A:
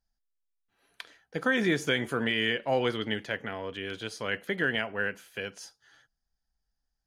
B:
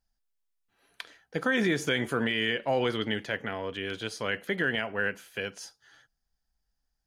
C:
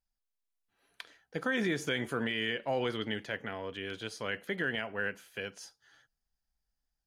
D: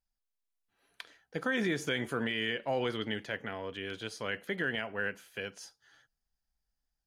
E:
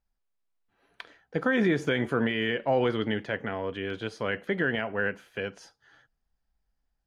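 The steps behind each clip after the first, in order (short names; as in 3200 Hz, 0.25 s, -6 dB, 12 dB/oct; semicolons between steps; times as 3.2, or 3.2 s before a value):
limiter -18.5 dBFS, peak gain reduction 3 dB; gain +2 dB
AGC gain up to 3.5 dB; gain -8.5 dB
nothing audible
LPF 1500 Hz 6 dB/oct; gain +8 dB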